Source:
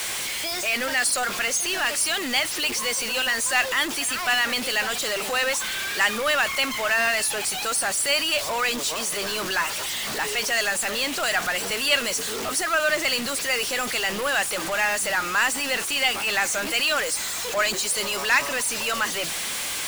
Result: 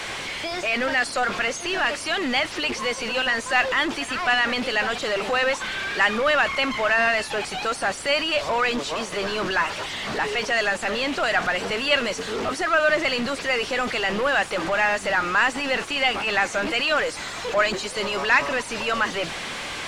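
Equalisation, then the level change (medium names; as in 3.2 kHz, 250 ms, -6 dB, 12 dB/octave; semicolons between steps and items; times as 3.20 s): tape spacing loss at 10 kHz 22 dB; +5.5 dB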